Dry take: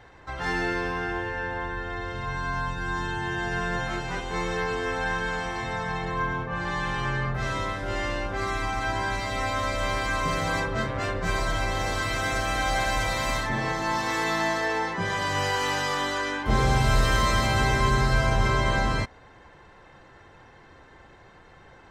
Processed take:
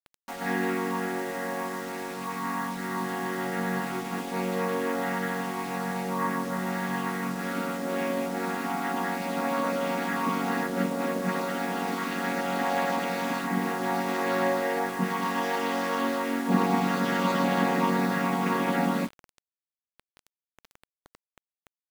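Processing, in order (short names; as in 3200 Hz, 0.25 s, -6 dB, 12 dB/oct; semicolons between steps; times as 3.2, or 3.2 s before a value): chord vocoder major triad, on F#3; bit-crush 7-bit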